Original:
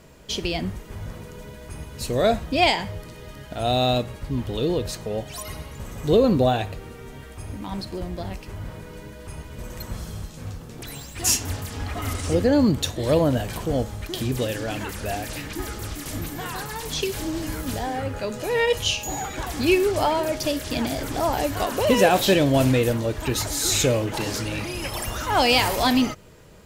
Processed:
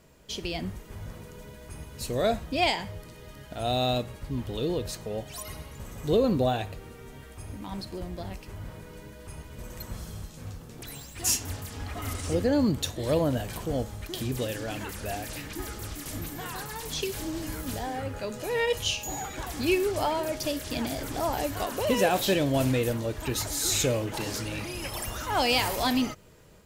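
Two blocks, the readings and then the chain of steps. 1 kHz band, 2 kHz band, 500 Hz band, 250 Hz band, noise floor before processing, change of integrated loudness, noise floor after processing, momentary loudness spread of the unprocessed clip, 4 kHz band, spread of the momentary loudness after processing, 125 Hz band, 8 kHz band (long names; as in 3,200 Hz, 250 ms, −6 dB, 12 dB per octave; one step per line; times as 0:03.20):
−6.0 dB, −6.0 dB, −6.0 dB, −6.0 dB, −41 dBFS, −5.5 dB, −47 dBFS, 19 LU, −5.5 dB, 18 LU, −6.0 dB, −4.5 dB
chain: high-shelf EQ 8,300 Hz +4 dB
automatic gain control gain up to 3 dB
level −8.5 dB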